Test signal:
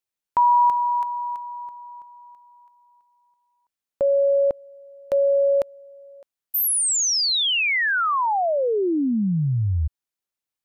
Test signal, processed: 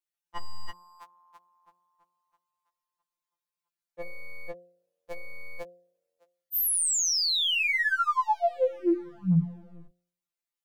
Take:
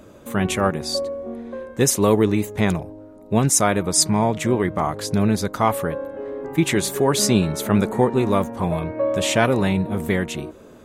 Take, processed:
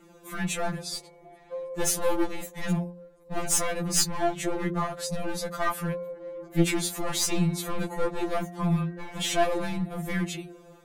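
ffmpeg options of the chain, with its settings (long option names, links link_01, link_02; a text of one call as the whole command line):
ffmpeg -i in.wav -af "aeval=exprs='clip(val(0),-1,0.112)':channel_layout=same,bandreject=frequency=58.64:width_type=h:width=4,bandreject=frequency=117.28:width_type=h:width=4,bandreject=frequency=175.92:width_type=h:width=4,bandreject=frequency=234.56:width_type=h:width=4,bandreject=frequency=293.2:width_type=h:width=4,bandreject=frequency=351.84:width_type=h:width=4,bandreject=frequency=410.48:width_type=h:width=4,bandreject=frequency=469.12:width_type=h:width=4,bandreject=frequency=527.76:width_type=h:width=4,bandreject=frequency=586.4:width_type=h:width=4,bandreject=frequency=645.04:width_type=h:width=4,bandreject=frequency=703.68:width_type=h:width=4,bandreject=frequency=762.32:width_type=h:width=4,afftfilt=real='re*2.83*eq(mod(b,8),0)':imag='im*2.83*eq(mod(b,8),0)':win_size=2048:overlap=0.75,volume=-2.5dB" out.wav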